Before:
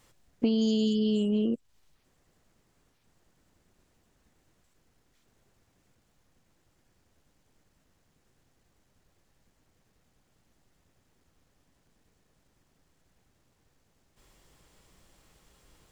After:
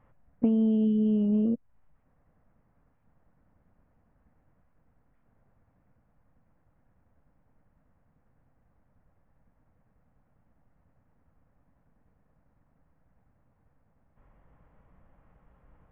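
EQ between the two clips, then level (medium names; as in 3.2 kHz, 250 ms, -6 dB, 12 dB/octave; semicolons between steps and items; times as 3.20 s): Gaussian low-pass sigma 5.4 samples; peaking EQ 370 Hz -12 dB 0.44 oct; +3.5 dB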